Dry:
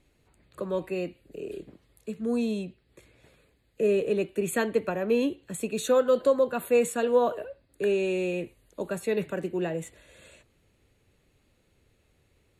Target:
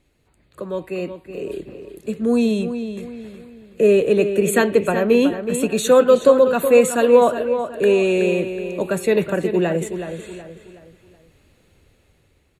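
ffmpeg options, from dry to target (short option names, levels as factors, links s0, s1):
-filter_complex "[0:a]dynaudnorm=f=840:g=3:m=2.51,asplit=2[s0][s1];[s1]adelay=372,lowpass=f=4200:p=1,volume=0.355,asplit=2[s2][s3];[s3]adelay=372,lowpass=f=4200:p=1,volume=0.39,asplit=2[s4][s5];[s5]adelay=372,lowpass=f=4200:p=1,volume=0.39,asplit=2[s6][s7];[s7]adelay=372,lowpass=f=4200:p=1,volume=0.39[s8];[s0][s2][s4][s6][s8]amix=inputs=5:normalize=0,volume=1.26"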